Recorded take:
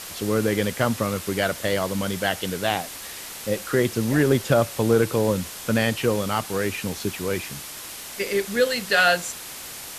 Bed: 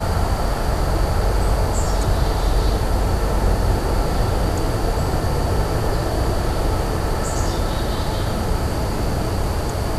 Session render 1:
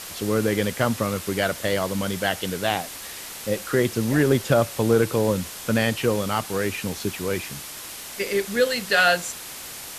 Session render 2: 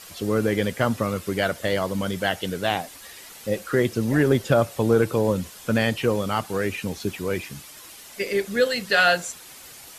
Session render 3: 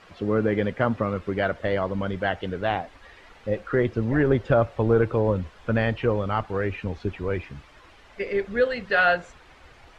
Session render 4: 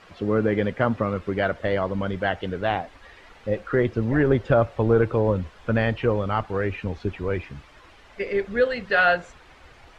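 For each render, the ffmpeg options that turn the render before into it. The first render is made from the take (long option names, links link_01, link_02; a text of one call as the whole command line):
ffmpeg -i in.wav -af anull out.wav
ffmpeg -i in.wav -af "afftdn=noise_reduction=9:noise_floor=-37" out.wav
ffmpeg -i in.wav -af "lowpass=2000,asubboost=boost=6:cutoff=67" out.wav
ffmpeg -i in.wav -af "volume=1dB" out.wav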